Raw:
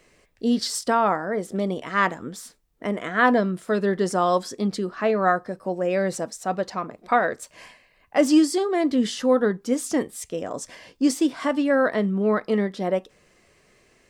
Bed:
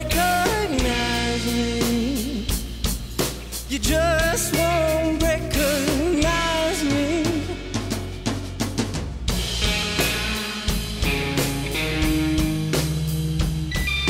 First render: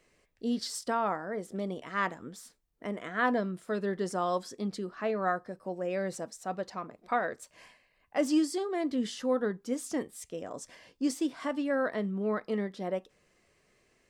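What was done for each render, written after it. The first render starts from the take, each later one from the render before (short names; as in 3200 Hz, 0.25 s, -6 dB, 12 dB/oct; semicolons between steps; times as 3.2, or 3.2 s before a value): gain -9.5 dB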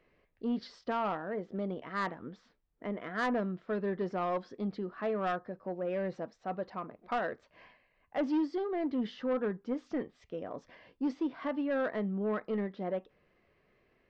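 Gaussian blur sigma 2.6 samples; soft clip -25 dBFS, distortion -15 dB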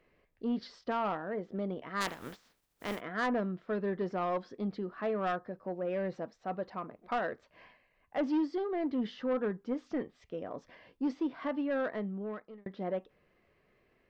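2–2.99 spectral contrast lowered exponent 0.47; 11.45–12.66 fade out equal-power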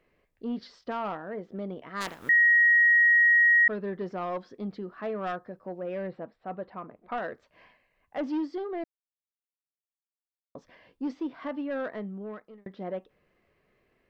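2.29–3.68 bleep 1890 Hz -16.5 dBFS; 6.07–7.18 running mean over 7 samples; 8.84–10.55 mute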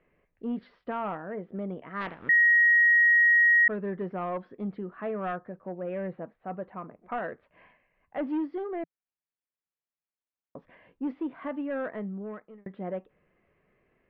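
LPF 2700 Hz 24 dB/oct; bell 170 Hz +3.5 dB 0.47 oct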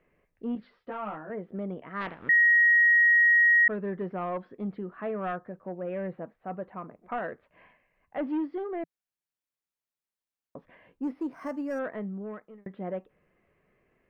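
0.55–1.3 ensemble effect; 11.03–11.79 decimation joined by straight lines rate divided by 6×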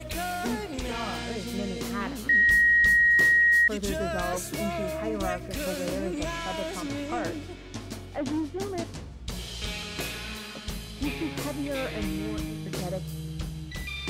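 add bed -12 dB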